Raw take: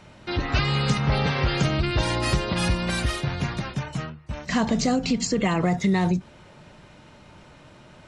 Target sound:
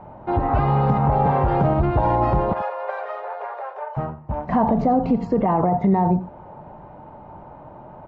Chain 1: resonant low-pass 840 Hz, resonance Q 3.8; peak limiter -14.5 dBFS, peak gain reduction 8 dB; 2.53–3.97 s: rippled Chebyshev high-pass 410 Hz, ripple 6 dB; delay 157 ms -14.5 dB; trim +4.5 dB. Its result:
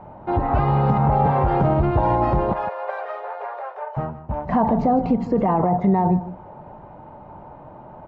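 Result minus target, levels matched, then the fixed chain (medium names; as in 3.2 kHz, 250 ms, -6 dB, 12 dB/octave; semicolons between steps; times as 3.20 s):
echo 70 ms late
resonant low-pass 840 Hz, resonance Q 3.8; peak limiter -14.5 dBFS, peak gain reduction 8 dB; 2.53–3.97 s: rippled Chebyshev high-pass 410 Hz, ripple 6 dB; delay 87 ms -14.5 dB; trim +4.5 dB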